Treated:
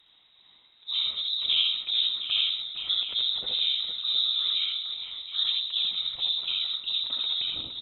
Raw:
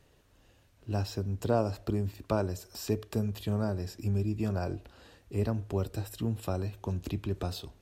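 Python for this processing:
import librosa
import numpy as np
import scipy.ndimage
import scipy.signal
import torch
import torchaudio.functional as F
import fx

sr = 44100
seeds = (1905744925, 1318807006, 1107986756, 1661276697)

y = fx.freq_invert(x, sr, carrier_hz=3800)
y = fx.whisperise(y, sr, seeds[0])
y = fx.echo_multitap(y, sr, ms=(66, 82, 142, 197, 463, 717), db=(-5.5, -3.5, -16.5, -14.0, -8.5, -10.0))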